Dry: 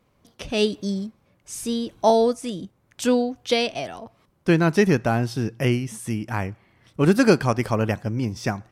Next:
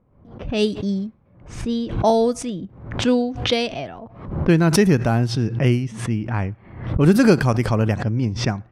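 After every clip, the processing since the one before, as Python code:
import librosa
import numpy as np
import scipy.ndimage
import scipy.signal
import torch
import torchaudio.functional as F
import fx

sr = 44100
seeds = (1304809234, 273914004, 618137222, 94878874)

y = fx.env_lowpass(x, sr, base_hz=1100.0, full_db=-16.5)
y = fx.low_shelf(y, sr, hz=220.0, db=8.0)
y = fx.pre_swell(y, sr, db_per_s=87.0)
y = F.gain(torch.from_numpy(y), -1.0).numpy()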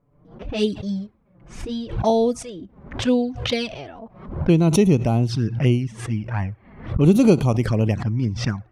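y = fx.env_flanger(x, sr, rest_ms=7.0, full_db=-13.5)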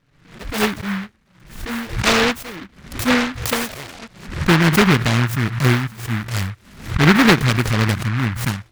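y = fx.noise_mod_delay(x, sr, seeds[0], noise_hz=1500.0, depth_ms=0.35)
y = F.gain(torch.from_numpy(y), 2.0).numpy()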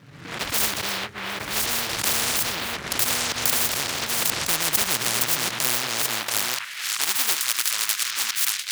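y = fx.reverse_delay(x, sr, ms=554, wet_db=-9)
y = fx.filter_sweep_highpass(y, sr, from_hz=120.0, to_hz=3800.0, start_s=5.16, end_s=7.07, q=1.3)
y = fx.spectral_comp(y, sr, ratio=10.0)
y = F.gain(torch.from_numpy(y), -1.0).numpy()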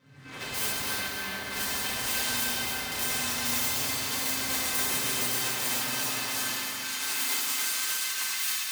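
y = fx.comb_fb(x, sr, f0_hz=520.0, decay_s=0.21, harmonics='all', damping=0.0, mix_pct=80)
y = fx.echo_feedback(y, sr, ms=284, feedback_pct=42, wet_db=-5)
y = fx.rev_fdn(y, sr, rt60_s=1.5, lf_ratio=1.2, hf_ratio=0.85, size_ms=23.0, drr_db=-7.5)
y = F.gain(torch.from_numpy(y), -3.5).numpy()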